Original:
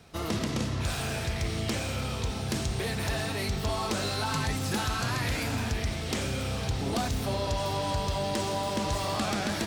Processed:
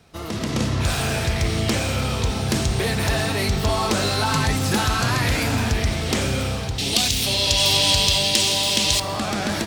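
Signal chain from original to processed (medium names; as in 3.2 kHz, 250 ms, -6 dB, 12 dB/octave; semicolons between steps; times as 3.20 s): 6.78–9.00 s: resonant high shelf 2 kHz +13.5 dB, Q 1.5; level rider gain up to 9 dB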